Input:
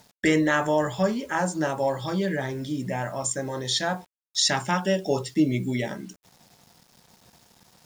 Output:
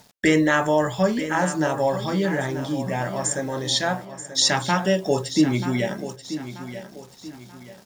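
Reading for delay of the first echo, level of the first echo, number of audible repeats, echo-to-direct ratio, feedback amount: 0.934 s, -12.0 dB, 3, -11.5 dB, 38%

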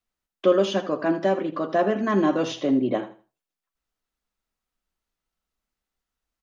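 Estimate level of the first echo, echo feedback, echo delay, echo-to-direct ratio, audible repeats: -14.0 dB, 24%, 80 ms, -13.5 dB, 2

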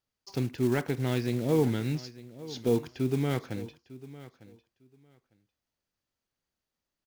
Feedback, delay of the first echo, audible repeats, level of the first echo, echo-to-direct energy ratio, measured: 17%, 0.902 s, 2, -17.5 dB, -17.5 dB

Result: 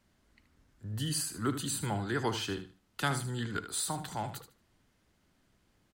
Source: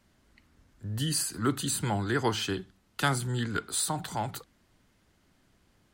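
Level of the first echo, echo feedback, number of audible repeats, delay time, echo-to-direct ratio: -11.0 dB, 20%, 2, 76 ms, -11.0 dB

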